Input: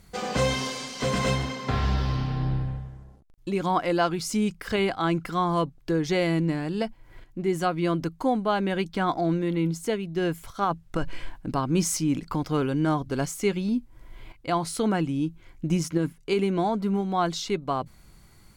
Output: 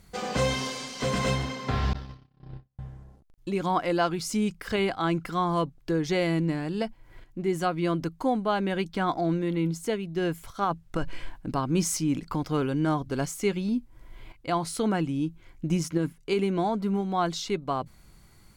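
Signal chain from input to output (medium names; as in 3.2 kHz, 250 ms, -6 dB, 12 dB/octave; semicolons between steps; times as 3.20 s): 1.93–2.79 s: gate -22 dBFS, range -50 dB; trim -1.5 dB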